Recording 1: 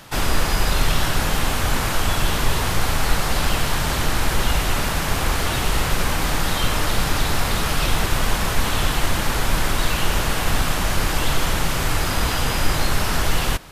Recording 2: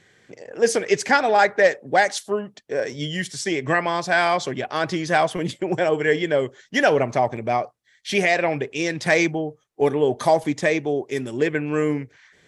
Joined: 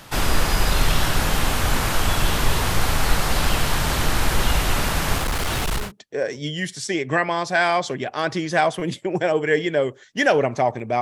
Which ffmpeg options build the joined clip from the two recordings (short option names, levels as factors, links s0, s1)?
-filter_complex "[0:a]asettb=1/sr,asplit=3[s0][s1][s2];[s0]atrim=end=5.184[s3];[s1]atrim=start=5.18:end=5.92,asetpts=PTS-STARTPTS,afade=t=in:d=0.004:c=qsin,afade=t=out:st=0.736:d=0.004:c=qsin,asoftclip=type=hard:threshold=0.106[s4];[s2]atrim=start=5.916[s5];[s3][s4]acrossfade=d=0.004:c1=hsin:c2=qsin[s6];[s6][s5]acrossfade=d=0.004:c1=qsin:c2=hsin,apad=whole_dur=11.01,atrim=end=11.01,atrim=end=5.92,asetpts=PTS-STARTPTS[s7];[1:a]atrim=start=2.33:end=7.58,asetpts=PTS-STARTPTS[s8];[s7][s8]acrossfade=d=0.16:c1=tri:c2=tri"